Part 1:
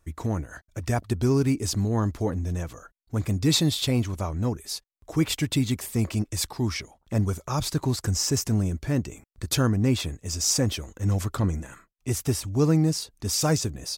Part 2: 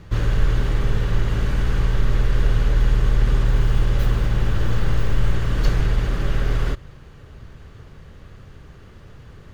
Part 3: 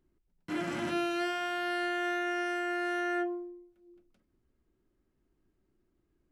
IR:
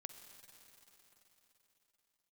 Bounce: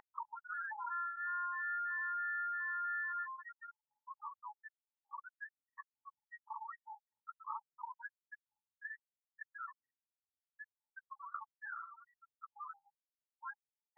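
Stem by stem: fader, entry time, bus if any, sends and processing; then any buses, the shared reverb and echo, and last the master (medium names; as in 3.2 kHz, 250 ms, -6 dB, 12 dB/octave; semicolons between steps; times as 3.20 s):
-8.5 dB, 0.00 s, send -7.5 dB, compression 6:1, threshold -32 dBFS, peak gain reduction 15 dB
mute
+2.0 dB, 0.00 s, send -9.5 dB, low-pass 1.3 kHz 6 dB/octave; cancelling through-zero flanger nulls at 0.43 Hz, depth 2 ms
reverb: on, RT60 3.9 s, pre-delay 43 ms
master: loudest bins only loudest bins 16; brick-wall FIR band-pass 840–1900 Hz; level flattener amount 70%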